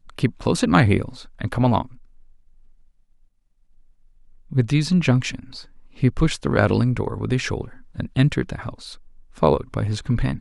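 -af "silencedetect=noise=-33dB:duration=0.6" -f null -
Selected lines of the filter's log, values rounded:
silence_start: 1.94
silence_end: 4.51 | silence_duration: 2.57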